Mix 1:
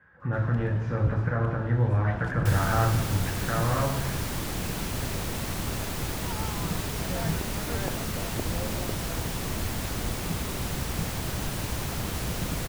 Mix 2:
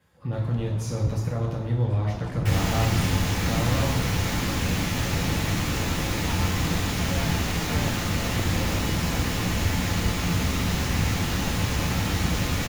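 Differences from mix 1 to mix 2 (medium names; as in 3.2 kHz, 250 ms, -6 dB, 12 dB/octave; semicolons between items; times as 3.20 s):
speech: remove resonant low-pass 1.6 kHz, resonance Q 6.6; second sound: send on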